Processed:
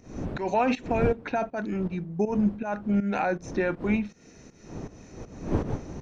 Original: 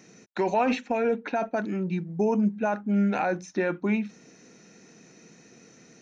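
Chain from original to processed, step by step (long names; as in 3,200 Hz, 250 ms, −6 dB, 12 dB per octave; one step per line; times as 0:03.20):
wind on the microphone 300 Hz −35 dBFS
fake sidechain pumping 80 BPM, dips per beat 2, −14 dB, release 192 ms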